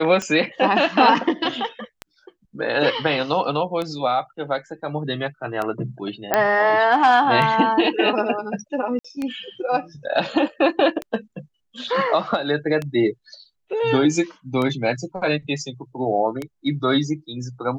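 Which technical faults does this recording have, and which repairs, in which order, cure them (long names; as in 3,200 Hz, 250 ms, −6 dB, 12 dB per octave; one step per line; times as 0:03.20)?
scratch tick 33 1/3 rpm −13 dBFS
0:06.34: click −3 dBFS
0:08.99–0:09.04: drop-out 55 ms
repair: click removal
repair the gap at 0:08.99, 55 ms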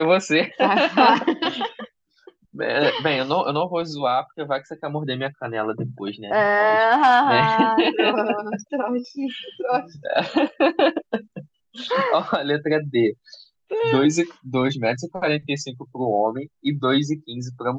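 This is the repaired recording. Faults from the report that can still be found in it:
none of them is left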